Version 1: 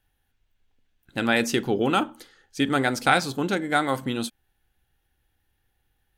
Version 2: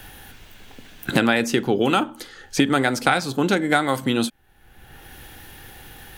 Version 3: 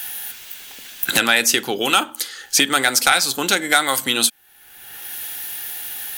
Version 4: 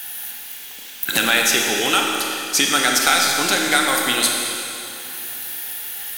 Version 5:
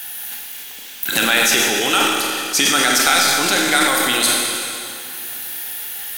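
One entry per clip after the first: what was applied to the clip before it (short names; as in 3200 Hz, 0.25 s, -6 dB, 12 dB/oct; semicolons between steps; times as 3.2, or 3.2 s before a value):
three-band squash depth 100%; gain +3 dB
tilt +4.5 dB/oct; sine folder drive 6 dB, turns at 5.5 dBFS; gain -7.5 dB
Schroeder reverb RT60 2.9 s, combs from 28 ms, DRR 0 dB; gain -2.5 dB
transient shaper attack -1 dB, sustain +11 dB; gain +1 dB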